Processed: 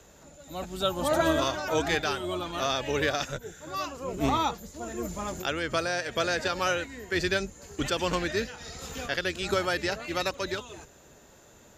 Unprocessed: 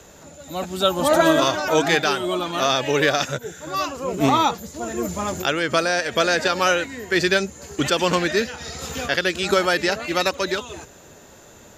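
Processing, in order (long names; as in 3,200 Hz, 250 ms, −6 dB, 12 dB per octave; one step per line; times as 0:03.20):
sub-octave generator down 2 octaves, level −6 dB
level −8.5 dB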